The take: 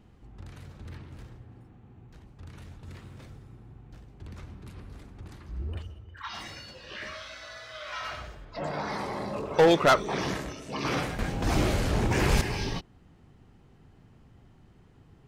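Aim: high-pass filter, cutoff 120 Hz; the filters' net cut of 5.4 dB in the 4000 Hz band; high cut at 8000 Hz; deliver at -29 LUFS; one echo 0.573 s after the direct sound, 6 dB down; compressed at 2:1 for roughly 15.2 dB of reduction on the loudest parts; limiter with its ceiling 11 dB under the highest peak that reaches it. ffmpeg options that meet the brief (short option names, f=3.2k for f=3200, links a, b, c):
-af "highpass=120,lowpass=8k,equalizer=f=4k:t=o:g=-7,acompressor=threshold=-45dB:ratio=2,alimiter=level_in=10.5dB:limit=-24dB:level=0:latency=1,volume=-10.5dB,aecho=1:1:573:0.501,volume=16.5dB"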